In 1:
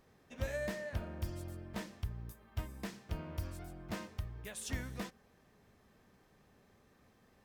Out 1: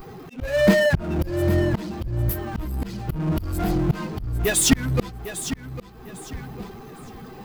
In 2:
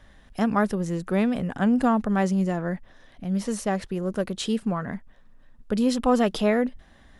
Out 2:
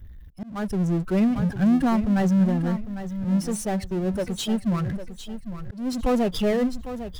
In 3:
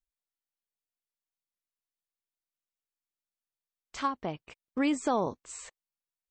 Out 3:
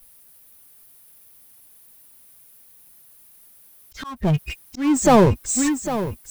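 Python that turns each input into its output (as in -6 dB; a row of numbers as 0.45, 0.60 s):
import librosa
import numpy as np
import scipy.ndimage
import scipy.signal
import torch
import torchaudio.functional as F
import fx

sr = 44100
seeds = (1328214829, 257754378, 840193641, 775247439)

p1 = fx.bin_expand(x, sr, power=2.0)
p2 = fx.power_curve(p1, sr, exponent=0.5)
p3 = p2 + fx.echo_feedback(p2, sr, ms=802, feedback_pct=26, wet_db=-11.5, dry=0)
p4 = fx.auto_swell(p3, sr, attack_ms=352.0)
p5 = fx.low_shelf(p4, sr, hz=350.0, db=8.5)
y = p5 * 10.0 ** (-24 / 20.0) / np.sqrt(np.mean(np.square(p5)))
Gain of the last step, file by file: +18.5, -6.0, +11.5 dB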